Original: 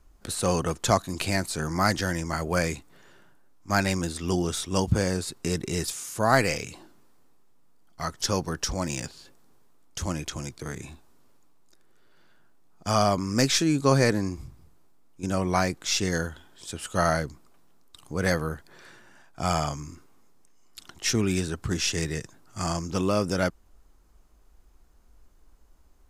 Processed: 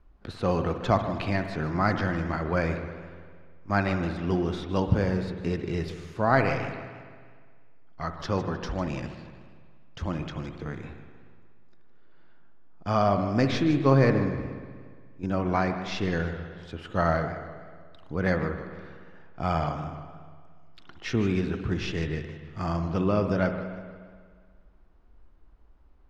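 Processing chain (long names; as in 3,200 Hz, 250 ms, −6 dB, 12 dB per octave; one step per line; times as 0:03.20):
high-frequency loss of the air 310 metres
on a send at −8 dB: convolution reverb RT60 1.8 s, pre-delay 59 ms
on the sum: feedback echo with a swinging delay time 155 ms, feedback 39%, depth 188 cents, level −14 dB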